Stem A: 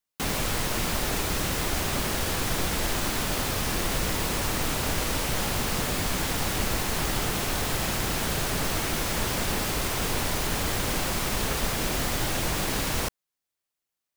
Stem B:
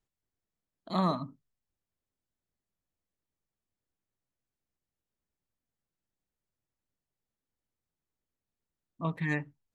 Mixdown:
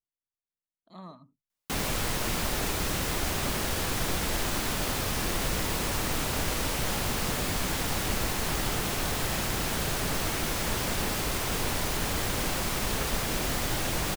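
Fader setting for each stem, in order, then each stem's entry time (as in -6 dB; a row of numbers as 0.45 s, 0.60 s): -2.0 dB, -17.0 dB; 1.50 s, 0.00 s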